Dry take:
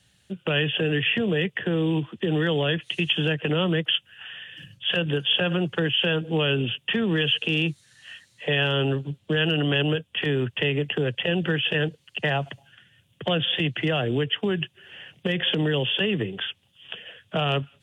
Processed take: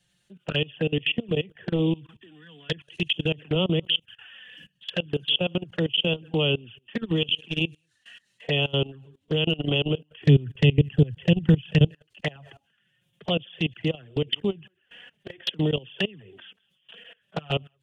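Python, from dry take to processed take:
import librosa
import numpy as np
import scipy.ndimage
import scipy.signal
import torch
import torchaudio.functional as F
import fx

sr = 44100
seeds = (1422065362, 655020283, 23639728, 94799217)

y = fx.peak_eq(x, sr, hz=530.0, db=-14.5, octaves=1.4, at=(1.95, 2.69))
y = y + 10.0 ** (-24.0 / 20.0) * np.pad(y, (int(185 * sr / 1000.0), 0))[:len(y)]
y = fx.level_steps(y, sr, step_db=23)
y = fx.env_flanger(y, sr, rest_ms=5.8, full_db=-23.5)
y = fx.bass_treble(y, sr, bass_db=14, treble_db=6, at=(10.22, 11.87))
y = y * librosa.db_to_amplitude(2.0)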